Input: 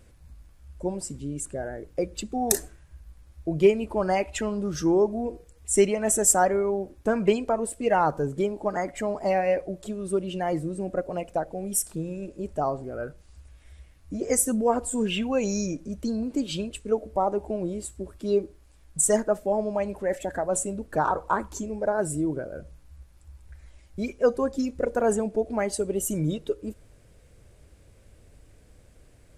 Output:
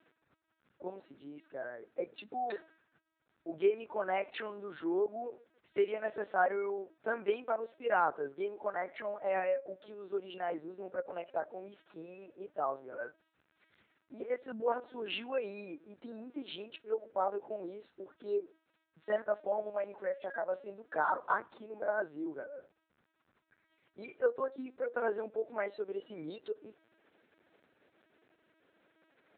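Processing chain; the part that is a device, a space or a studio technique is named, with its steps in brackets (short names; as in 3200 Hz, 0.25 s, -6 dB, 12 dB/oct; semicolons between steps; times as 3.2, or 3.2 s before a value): talking toy (LPC vocoder at 8 kHz pitch kept; HPF 380 Hz 12 dB/oct; bell 1500 Hz +6.5 dB 0.59 oct); gain -8 dB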